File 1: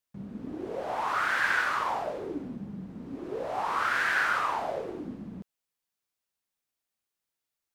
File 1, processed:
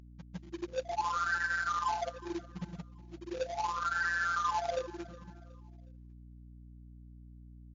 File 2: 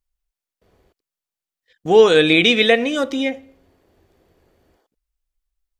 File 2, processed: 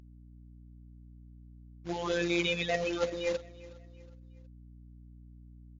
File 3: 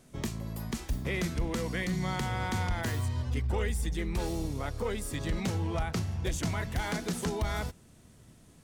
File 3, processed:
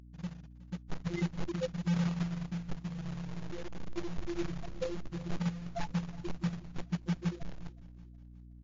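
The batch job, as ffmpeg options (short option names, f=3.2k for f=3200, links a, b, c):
-af "bandreject=f=84.65:t=h:w=4,bandreject=f=169.3:t=h:w=4,bandreject=f=253.95:t=h:w=4,bandreject=f=338.6:t=h:w=4,bandreject=f=423.25:t=h:w=4,bandreject=f=507.9:t=h:w=4,bandreject=f=592.55:t=h:w=4,afftfilt=real='re*gte(hypot(re,im),0.158)':imag='im*gte(hypot(re,im),0.158)':win_size=1024:overlap=0.75,lowpass=f=3.5k:p=1,areverse,acompressor=threshold=-32dB:ratio=6,areverse,afftfilt=real='hypot(re,im)*cos(PI*b)':imag='0':win_size=1024:overlap=0.75,acrusher=bits=2:mode=log:mix=0:aa=0.000001,aeval=exprs='val(0)+0.00126*(sin(2*PI*60*n/s)+sin(2*PI*2*60*n/s)/2+sin(2*PI*3*60*n/s)/3+sin(2*PI*4*60*n/s)/4+sin(2*PI*5*60*n/s)/5)':c=same,aecho=1:1:366|732|1098:0.0944|0.0387|0.0159,volume=7dB" -ar 16000 -c:a libmp3lame -b:a 64k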